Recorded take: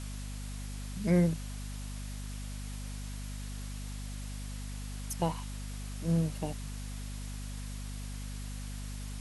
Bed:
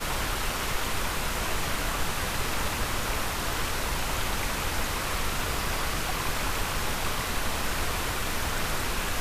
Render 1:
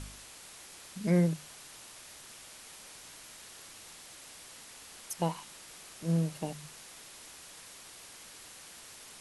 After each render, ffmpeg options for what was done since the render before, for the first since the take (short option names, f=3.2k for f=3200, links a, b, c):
-af "bandreject=f=50:t=h:w=4,bandreject=f=100:t=h:w=4,bandreject=f=150:t=h:w=4,bandreject=f=200:t=h:w=4,bandreject=f=250:t=h:w=4"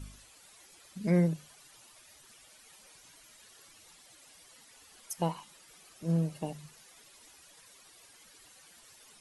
-af "afftdn=nr=12:nf=-51"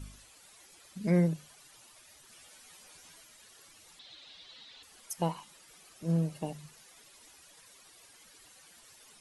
-filter_complex "[0:a]asettb=1/sr,asplit=3[a][b][c];[a]atrim=end=2.314[d];[b]atrim=start=2.31:end=3.24,asetpts=PTS-STARTPTS,afade=t=in:d=0.004:c=qsin,afade=t=out:st=0.926:d=0.004:c=qsin,asplit=2[e][f];[f]adelay=12,volume=-2.5dB[g];[e][g]amix=inputs=2:normalize=0,atrim=end_sample=41013[h];[c]atrim=start=3.236[i];[d][h]acrossfade=d=0.004:c1=hsin:c2=qsin[j];[j][i]acrossfade=d=0.004:c1=qsin:c2=hsin,asettb=1/sr,asplit=3[k][l][m];[k]atrim=end=3.994[n];[l]atrim=start=3.99:end=4.83,asetpts=PTS-STARTPTS,afade=t=in:d=0.004:c=qsin,afade=t=out:st=0.836:d=0.004:c=qsin,lowpass=f=3.8k:t=q:w=5.6[o];[m]atrim=start=4.826[p];[n][o]acrossfade=d=0.004:c1=hsin:c2=qsin[q];[q][p]acrossfade=d=0.004:c1=qsin:c2=hsin"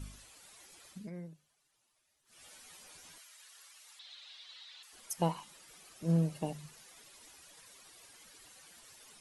-filter_complex "[0:a]asettb=1/sr,asplit=3[a][b][c];[a]atrim=end=3.184[d];[b]atrim=start=3.18:end=4.93,asetpts=PTS-STARTPTS,afade=t=in:d=0.004:c=qsin,afade=t=out:st=1.746:d=0.004:c=qsin,highpass=1k[e];[c]atrim=start=4.926[f];[d][e]acrossfade=d=0.004:c1=hsin:c2=qsin[g];[g][f]acrossfade=d=0.004:c1=qsin:c2=hsin,asplit=3[h][i][j];[h]atrim=end=1.1,asetpts=PTS-STARTPTS,afade=t=out:st=0.89:d=0.21:silence=0.1[k];[i]atrim=start=1.1:end=2.25,asetpts=PTS-STARTPTS,volume=-20dB[l];[j]atrim=start=2.25,asetpts=PTS-STARTPTS,afade=t=in:d=0.21:silence=0.1[m];[k][l][m]concat=n=3:v=0:a=1"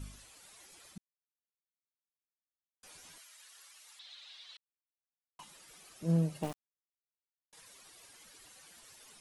-filter_complex "[0:a]asettb=1/sr,asplit=3[a][b][c];[a]atrim=end=6.434[d];[b]atrim=start=6.43:end=7.53,asetpts=PTS-STARTPTS,afade=t=in:d=0.004:c=qsin,afade=t=out:st=1.096:d=0.004:c=qsin,aeval=exprs='val(0)*gte(abs(val(0)),0.0112)':c=same[e];[c]atrim=start=7.526[f];[d][e]acrossfade=d=0.004:c1=hsin:c2=qsin[g];[g][f]acrossfade=d=0.004:c1=qsin:c2=hsin,asplit=5[h][i][j][k][l];[h]atrim=end=0.98,asetpts=PTS-STARTPTS,afade=t=out:st=0.976:d=0.004:c=hsin[m];[i]atrim=start=0.98:end=2.83,asetpts=PTS-STARTPTS,volume=0[n];[j]atrim=start=2.83:end=4.57,asetpts=PTS-STARTPTS,afade=t=in:d=0.004:c=hsin,afade=t=out:st=1.736:d=0.004:c=hsin[o];[k]atrim=start=4.57:end=5.39,asetpts=PTS-STARTPTS,volume=0[p];[l]atrim=start=5.39,asetpts=PTS-STARTPTS,afade=t=in:d=0.004:c=hsin[q];[m][n][o][p][q]concat=n=5:v=0:a=1"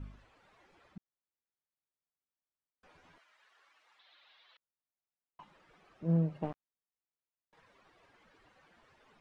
-af "lowpass=1.7k"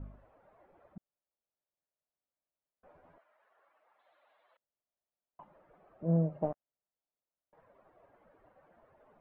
-af "lowpass=1.2k,equalizer=f=610:w=2.6:g=9.5"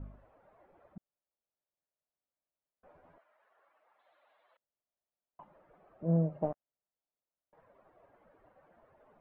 -af anull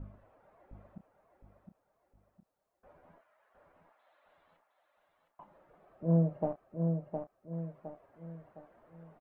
-filter_complex "[0:a]asplit=2[a][b];[b]adelay=30,volume=-11dB[c];[a][c]amix=inputs=2:normalize=0,asplit=2[d][e];[e]aecho=0:1:712|1424|2136|2848|3560:0.562|0.231|0.0945|0.0388|0.0159[f];[d][f]amix=inputs=2:normalize=0"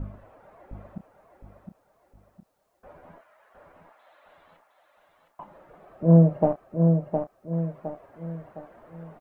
-af "volume=11.5dB"